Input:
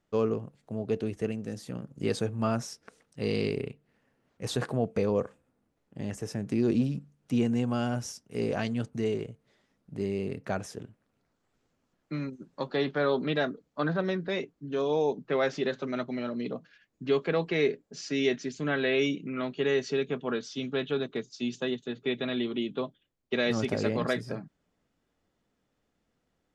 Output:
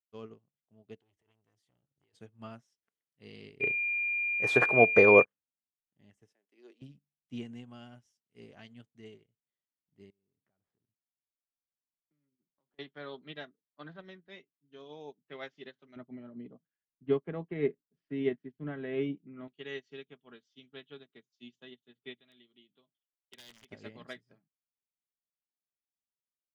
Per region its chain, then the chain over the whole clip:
0:01.01–0:02.17: parametric band 210 Hz −11 dB 0.74 octaves + compressor whose output falls as the input rises −36 dBFS + saturating transformer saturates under 810 Hz
0:03.60–0:05.23: flat-topped bell 800 Hz +12.5 dB 2.8 octaves + steady tone 2,400 Hz −22 dBFS
0:06.33–0:06.82: high-pass filter 380 Hz 24 dB per octave + noise gate −50 dBFS, range −7 dB
0:10.10–0:12.79: running median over 15 samples + high-shelf EQ 2,500 Hz −9.5 dB + downward compressor 12 to 1, threshold −43 dBFS
0:15.96–0:19.48: low-pass filter 1,400 Hz + low-shelf EQ 430 Hz +8.5 dB
0:22.17–0:23.70: wrap-around overflow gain 19.5 dB + parametric band 5,400 Hz +5.5 dB 1.8 octaves + downward compressor 1.5 to 1, threshold −43 dBFS
whole clip: thirty-one-band graphic EQ 500 Hz −5 dB, 2,000 Hz +6 dB, 3,150 Hz +10 dB; expander for the loud parts 2.5 to 1, over −39 dBFS

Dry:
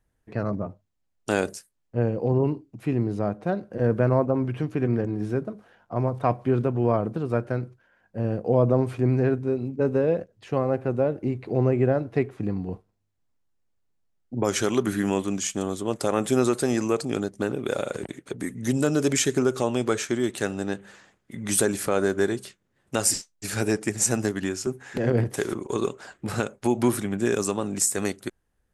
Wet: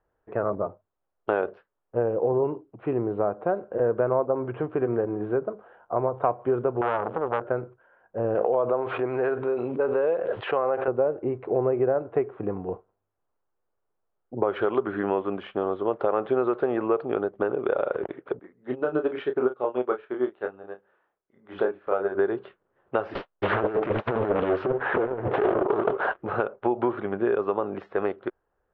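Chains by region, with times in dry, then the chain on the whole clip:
0:06.81–0:07.42: converter with a step at zero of −35 dBFS + saturating transformer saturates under 1,700 Hz
0:08.35–0:10.88: spectral tilt +4 dB per octave + background raised ahead of every attack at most 21 dB per second
0:18.39–0:22.15: parametric band 120 Hz −6.5 dB 0.44 octaves + double-tracking delay 32 ms −3 dB + expander for the loud parts 2.5 to 1, over −31 dBFS
0:23.15–0:26.19: compressor whose output falls as the input rises −30 dBFS, ratio −0.5 + leveller curve on the samples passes 3 + highs frequency-modulated by the lows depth 0.99 ms
whole clip: Butterworth low-pass 3,300 Hz 48 dB per octave; flat-topped bell 730 Hz +14 dB 2.4 octaves; downward compressor 3 to 1, threshold −14 dBFS; level −7 dB

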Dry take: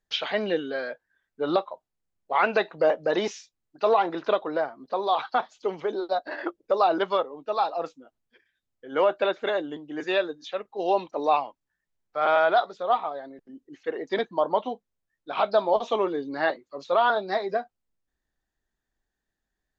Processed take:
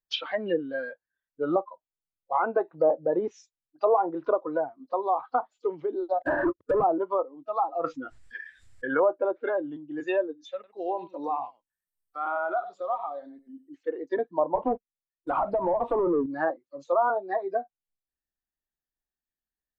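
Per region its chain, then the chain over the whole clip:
0:06.21–0:06.84: high-shelf EQ 3,800 Hz −6.5 dB + downward compressor 10 to 1, threshold −26 dBFS + leveller curve on the samples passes 5
0:07.84–0:09.00: low-pass with resonance 5,500 Hz, resonance Q 2 + parametric band 1,800 Hz +11.5 dB 0.93 octaves + envelope flattener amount 50%
0:10.54–0:13.75: high-shelf EQ 4,300 Hz +6 dB + downward compressor 2 to 1, threshold −28 dBFS + single-tap delay 95 ms −11.5 dB
0:14.55–0:16.26: low-pass filter 1,400 Hz 6 dB per octave + downward compressor 16 to 1, threshold −25 dBFS + leveller curve on the samples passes 3
whole clip: treble cut that deepens with the level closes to 1,000 Hz, closed at −20.5 dBFS; noise reduction from a noise print of the clip's start 15 dB

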